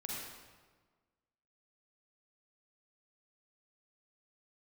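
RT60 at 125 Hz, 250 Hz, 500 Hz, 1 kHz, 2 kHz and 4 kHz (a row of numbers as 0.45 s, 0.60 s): 1.6 s, 1.6 s, 1.5 s, 1.4 s, 1.2 s, 1.0 s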